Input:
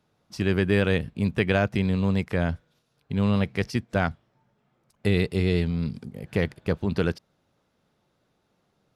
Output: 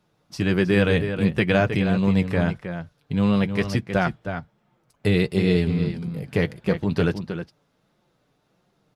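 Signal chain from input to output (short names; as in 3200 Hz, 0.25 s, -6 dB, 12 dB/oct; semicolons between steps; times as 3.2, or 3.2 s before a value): outdoor echo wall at 54 m, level -8 dB; flange 1.5 Hz, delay 5.4 ms, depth 1.8 ms, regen -36%; gain +6.5 dB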